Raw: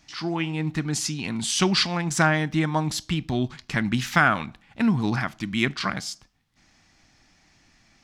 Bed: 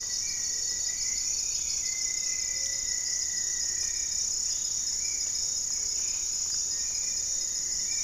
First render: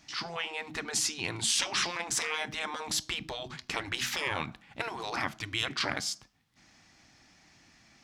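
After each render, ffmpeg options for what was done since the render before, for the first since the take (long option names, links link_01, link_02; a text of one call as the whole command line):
ffmpeg -i in.wav -af "highpass=frequency=93:poles=1,afftfilt=real='re*lt(hypot(re,im),0.141)':imag='im*lt(hypot(re,im),0.141)':win_size=1024:overlap=0.75" out.wav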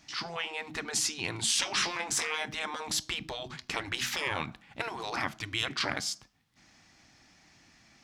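ffmpeg -i in.wav -filter_complex "[0:a]asettb=1/sr,asplit=3[link_01][link_02][link_03];[link_01]atrim=end=1.644[link_04];[link_02]atrim=start=1.64:end=2.24,asetpts=PTS-STARTPTS,afade=type=in:duration=0.004:curve=qsin,afade=type=out:start_time=0.596:duration=0.004:curve=qsin,asplit=2[link_05][link_06];[link_06]adelay=20,volume=-8dB[link_07];[link_05][link_07]amix=inputs=2:normalize=0,atrim=end_sample=26460[link_08];[link_03]atrim=start=2.236[link_09];[link_04][link_08]acrossfade=duration=0.004:curve1=hsin:curve2=qsin[link_10];[link_10][link_09]acrossfade=duration=0.004:curve1=qsin:curve2=hsin" out.wav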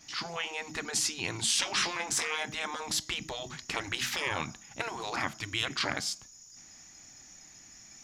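ffmpeg -i in.wav -i bed.wav -filter_complex "[1:a]volume=-23dB[link_01];[0:a][link_01]amix=inputs=2:normalize=0" out.wav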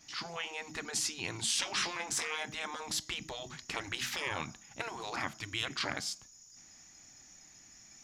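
ffmpeg -i in.wav -af "volume=-4dB" out.wav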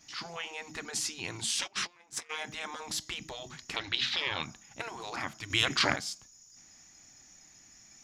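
ffmpeg -i in.wav -filter_complex "[0:a]asplit=3[link_01][link_02][link_03];[link_01]afade=type=out:start_time=1.66:duration=0.02[link_04];[link_02]agate=range=-22dB:threshold=-34dB:ratio=16:release=100:detection=peak,afade=type=in:start_time=1.66:duration=0.02,afade=type=out:start_time=2.29:duration=0.02[link_05];[link_03]afade=type=in:start_time=2.29:duration=0.02[link_06];[link_04][link_05][link_06]amix=inputs=3:normalize=0,asettb=1/sr,asplit=3[link_07][link_08][link_09];[link_07]atrim=end=3.764[link_10];[link_08]atrim=start=3.76:end=4.43,asetpts=PTS-STARTPTS,afade=type=in:duration=0.004:curve=qsin,afade=type=out:start_time=0.666:duration=0.004:curve=qsin,lowpass=frequency=3900:width_type=q:width=4.2[link_11];[link_09]atrim=start=4.426[link_12];[link_10][link_11]acrossfade=duration=0.004:curve1=hsin:curve2=qsin[link_13];[link_13][link_12]acrossfade=duration=0.004:curve1=qsin:curve2=hsin,asplit=3[link_14][link_15][link_16];[link_14]atrim=end=5.502[link_17];[link_15]atrim=start=5.498:end=5.962,asetpts=PTS-STARTPTS,volume=8.5dB[link_18];[link_16]atrim=start=5.958[link_19];[link_17][link_18]acrossfade=duration=0.004:curve1=hsin:curve2=hsin[link_20];[link_20][link_19]acrossfade=duration=0.004:curve1=hsin:curve2=hsin" out.wav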